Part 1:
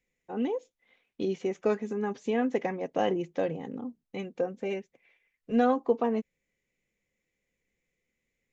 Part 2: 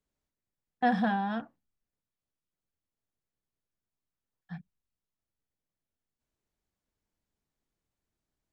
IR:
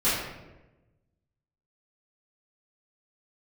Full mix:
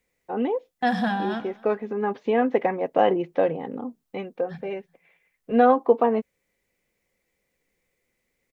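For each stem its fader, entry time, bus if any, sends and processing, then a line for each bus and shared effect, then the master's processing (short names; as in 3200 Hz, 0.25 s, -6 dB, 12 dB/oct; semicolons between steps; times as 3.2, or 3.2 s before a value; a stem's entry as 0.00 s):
0.0 dB, 0.00 s, no send, no echo send, LPF 4300 Hz 24 dB/oct; bell 820 Hz +9.5 dB 2.9 oct; auto duck -6 dB, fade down 0.40 s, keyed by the second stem
+2.5 dB, 0.00 s, no send, echo send -16 dB, high shelf 3500 Hz +10.5 dB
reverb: off
echo: feedback echo 0.125 s, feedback 40%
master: dry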